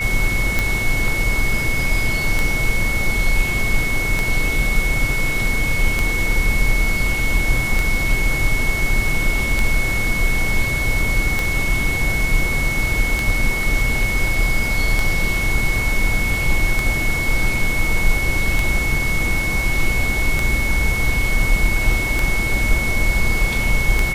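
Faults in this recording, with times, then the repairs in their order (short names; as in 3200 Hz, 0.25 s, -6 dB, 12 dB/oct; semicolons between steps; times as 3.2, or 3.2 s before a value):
tick 33 1/3 rpm -4 dBFS
tone 2200 Hz -21 dBFS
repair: de-click; notch 2200 Hz, Q 30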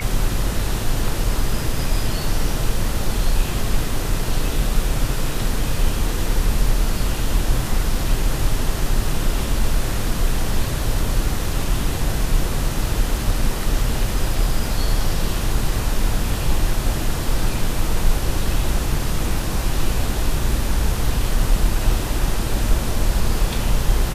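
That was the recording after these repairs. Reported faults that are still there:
none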